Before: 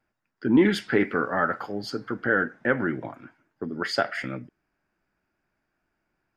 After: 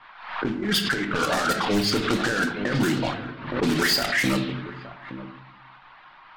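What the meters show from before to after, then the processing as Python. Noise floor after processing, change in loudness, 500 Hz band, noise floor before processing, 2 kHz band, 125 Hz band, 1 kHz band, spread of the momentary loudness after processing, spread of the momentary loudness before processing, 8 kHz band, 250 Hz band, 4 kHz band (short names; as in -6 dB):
-50 dBFS, +2.0 dB, -0.5 dB, -79 dBFS, +2.5 dB, +6.0 dB, +3.0 dB, 18 LU, 15 LU, +15.5 dB, +1.0 dB, +12.0 dB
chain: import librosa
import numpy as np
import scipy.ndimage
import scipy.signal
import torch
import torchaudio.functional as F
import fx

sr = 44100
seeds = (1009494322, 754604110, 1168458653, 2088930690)

p1 = fx.block_float(x, sr, bits=3)
p2 = np.repeat(scipy.signal.resample_poly(p1, 1, 2), 2)[:len(p1)]
p3 = fx.low_shelf(p2, sr, hz=130.0, db=3.0)
p4 = fx.dmg_noise_band(p3, sr, seeds[0], low_hz=940.0, high_hz=4200.0, level_db=-45.0)
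p5 = fx.dereverb_blind(p4, sr, rt60_s=0.76)
p6 = fx.over_compress(p5, sr, threshold_db=-29.0, ratio=-1.0)
p7 = fx.high_shelf(p6, sr, hz=3800.0, db=4.5)
p8 = p7 + fx.echo_single(p7, sr, ms=869, db=-15.0, dry=0)
p9 = fx.room_shoebox(p8, sr, seeds[1], volume_m3=240.0, walls='mixed', distance_m=0.5)
p10 = fx.env_lowpass(p9, sr, base_hz=380.0, full_db=-22.0)
p11 = fx.fold_sine(p10, sr, drive_db=7, ceiling_db=-11.0)
p12 = fx.pre_swell(p11, sr, db_per_s=76.0)
y = p12 * 10.0 ** (-5.0 / 20.0)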